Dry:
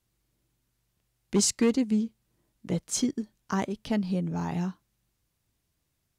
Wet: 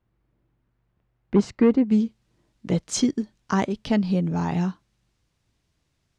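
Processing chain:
low-pass filter 1,600 Hz 12 dB per octave, from 0:01.91 6,200 Hz
level +6 dB

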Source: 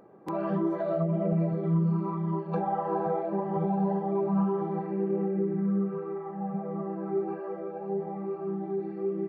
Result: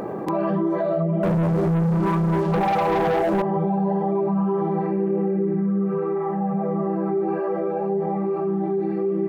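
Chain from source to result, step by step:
notch filter 1,400 Hz, Q 9.9
0:01.23–0:03.42: leveller curve on the samples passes 3
envelope flattener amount 70%

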